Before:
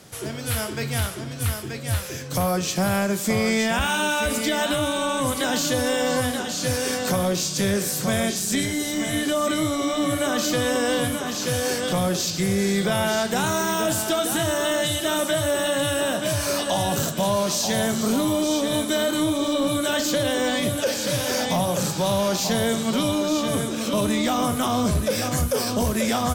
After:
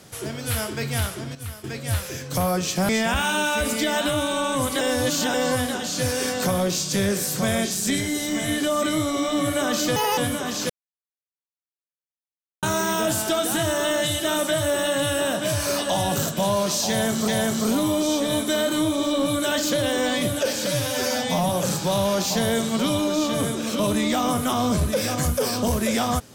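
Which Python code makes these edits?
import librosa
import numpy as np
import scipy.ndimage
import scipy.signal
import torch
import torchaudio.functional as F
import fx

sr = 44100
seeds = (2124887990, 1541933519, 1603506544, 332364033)

y = fx.edit(x, sr, fx.clip_gain(start_s=1.35, length_s=0.29, db=-9.5),
    fx.cut(start_s=2.89, length_s=0.65),
    fx.reverse_span(start_s=5.46, length_s=0.53),
    fx.speed_span(start_s=10.61, length_s=0.37, speed=1.71),
    fx.silence(start_s=11.5, length_s=1.93),
    fx.repeat(start_s=17.69, length_s=0.39, count=2),
    fx.stretch_span(start_s=21.08, length_s=0.55, factor=1.5), tone=tone)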